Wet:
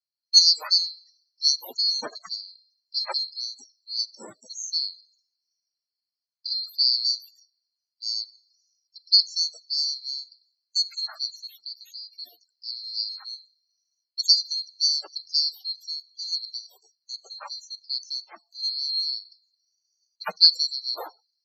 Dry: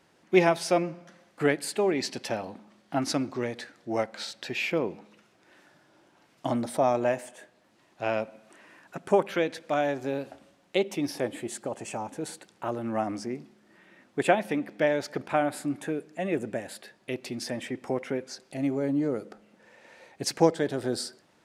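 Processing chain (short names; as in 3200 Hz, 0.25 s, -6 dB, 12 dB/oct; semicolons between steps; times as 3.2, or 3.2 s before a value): band-swap scrambler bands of 4000 Hz; HPF 230 Hz 6 dB/oct; loudest bins only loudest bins 32; three-band expander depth 70%; gain -1 dB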